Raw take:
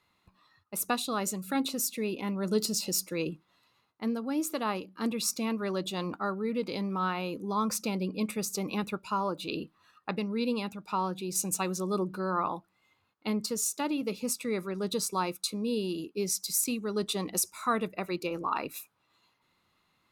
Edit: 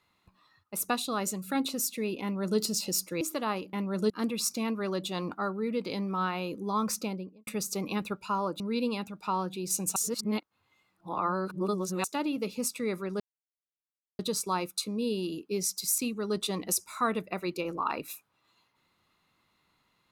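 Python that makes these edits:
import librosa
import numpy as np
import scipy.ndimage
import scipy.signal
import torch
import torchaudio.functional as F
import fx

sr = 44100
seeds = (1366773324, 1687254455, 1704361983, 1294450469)

y = fx.studio_fade_out(x, sr, start_s=7.75, length_s=0.54)
y = fx.edit(y, sr, fx.duplicate(start_s=2.22, length_s=0.37, to_s=4.92),
    fx.cut(start_s=3.21, length_s=1.19),
    fx.cut(start_s=9.42, length_s=0.83),
    fx.reverse_span(start_s=11.61, length_s=2.08),
    fx.insert_silence(at_s=14.85, length_s=0.99), tone=tone)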